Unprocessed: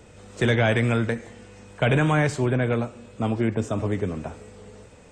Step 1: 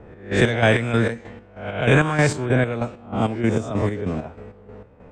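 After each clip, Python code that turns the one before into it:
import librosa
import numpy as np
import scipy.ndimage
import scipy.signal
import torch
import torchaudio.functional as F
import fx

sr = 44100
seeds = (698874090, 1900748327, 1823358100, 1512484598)

y = fx.spec_swells(x, sr, rise_s=0.64)
y = fx.chopper(y, sr, hz=3.2, depth_pct=60, duty_pct=45)
y = fx.env_lowpass(y, sr, base_hz=1200.0, full_db=-20.0)
y = y * 10.0 ** (4.0 / 20.0)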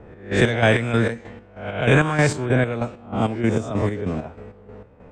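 y = x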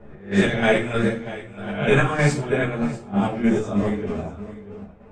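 y = x + 10.0 ** (-16.0 / 20.0) * np.pad(x, (int(640 * sr / 1000.0), 0))[:len(x)]
y = fx.room_shoebox(y, sr, seeds[0], volume_m3=340.0, walls='furnished', distance_m=1.3)
y = fx.ensemble(y, sr)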